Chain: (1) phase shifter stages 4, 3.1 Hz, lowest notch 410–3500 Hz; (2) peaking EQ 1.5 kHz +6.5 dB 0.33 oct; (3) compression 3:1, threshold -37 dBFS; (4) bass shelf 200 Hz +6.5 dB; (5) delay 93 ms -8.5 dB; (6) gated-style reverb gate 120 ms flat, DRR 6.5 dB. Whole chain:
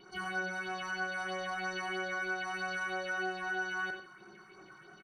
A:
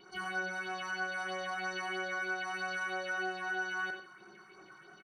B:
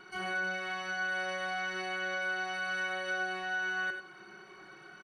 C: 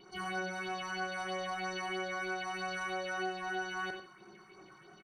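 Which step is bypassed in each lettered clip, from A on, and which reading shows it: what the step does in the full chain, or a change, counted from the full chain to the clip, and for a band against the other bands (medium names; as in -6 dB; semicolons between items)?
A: 4, 250 Hz band -2.0 dB; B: 1, momentary loudness spread change -1 LU; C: 2, 2 kHz band -5.0 dB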